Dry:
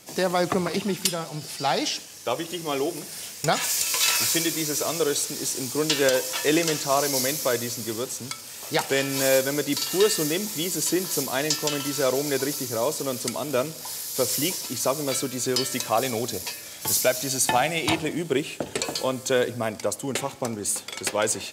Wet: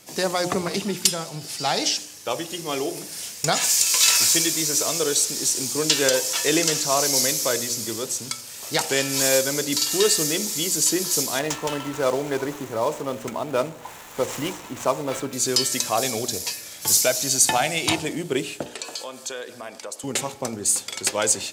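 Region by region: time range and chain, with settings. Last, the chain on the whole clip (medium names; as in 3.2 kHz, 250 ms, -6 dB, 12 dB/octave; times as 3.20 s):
11.39–15.33 s: median filter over 9 samples + peaking EQ 910 Hz +6 dB 0.9 oct
18.66–20.04 s: frequency weighting A + compression 2.5:1, threshold -33 dBFS + band-stop 2.1 kHz, Q 16
whole clip: de-hum 59.73 Hz, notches 15; dynamic bell 6.7 kHz, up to +7 dB, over -40 dBFS, Q 0.73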